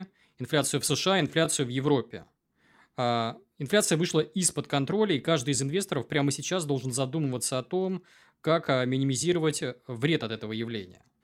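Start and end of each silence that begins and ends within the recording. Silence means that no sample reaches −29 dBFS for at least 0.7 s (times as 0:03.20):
0:02.17–0:02.99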